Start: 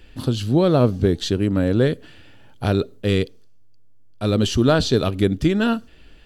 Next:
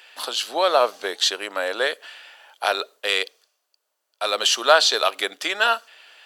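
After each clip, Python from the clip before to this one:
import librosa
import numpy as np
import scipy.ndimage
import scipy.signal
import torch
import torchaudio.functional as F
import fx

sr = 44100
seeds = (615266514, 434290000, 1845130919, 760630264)

y = scipy.signal.sosfilt(scipy.signal.butter(4, 690.0, 'highpass', fs=sr, output='sos'), x)
y = y * 10.0 ** (8.0 / 20.0)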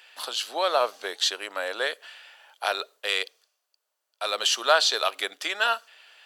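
y = fx.low_shelf(x, sr, hz=310.0, db=-8.0)
y = y * 10.0 ** (-4.0 / 20.0)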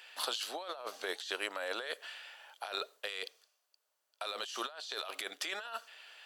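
y = fx.over_compress(x, sr, threshold_db=-33.0, ratio=-1.0)
y = y * 10.0 ** (-7.5 / 20.0)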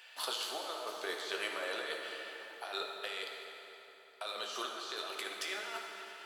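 y = fx.rev_fdn(x, sr, rt60_s=3.8, lf_ratio=1.0, hf_ratio=0.7, size_ms=46.0, drr_db=0.0)
y = y * 10.0 ** (-2.5 / 20.0)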